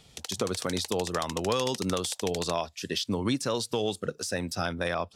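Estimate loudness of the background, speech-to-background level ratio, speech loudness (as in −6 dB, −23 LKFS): −38.5 LKFS, 8.0 dB, −30.5 LKFS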